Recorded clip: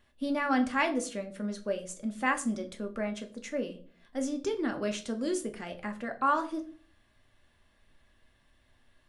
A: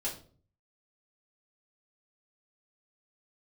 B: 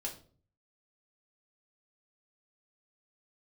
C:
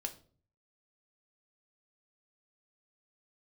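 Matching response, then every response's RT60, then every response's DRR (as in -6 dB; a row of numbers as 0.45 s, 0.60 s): C; 0.45 s, 0.45 s, 0.45 s; -7.0 dB, -2.0 dB, 4.5 dB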